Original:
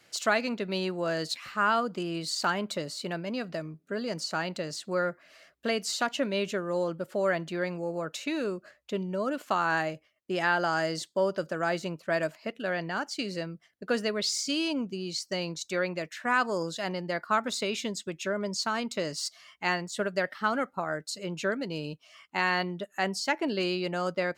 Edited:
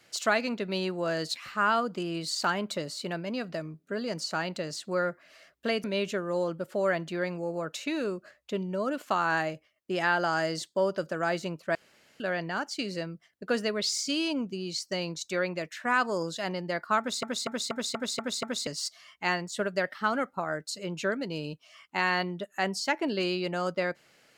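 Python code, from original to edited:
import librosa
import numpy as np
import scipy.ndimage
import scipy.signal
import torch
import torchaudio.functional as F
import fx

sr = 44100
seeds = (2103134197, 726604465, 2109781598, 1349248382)

y = fx.edit(x, sr, fx.cut(start_s=5.84, length_s=0.4),
    fx.room_tone_fill(start_s=12.15, length_s=0.45),
    fx.stutter_over(start_s=17.39, slice_s=0.24, count=7), tone=tone)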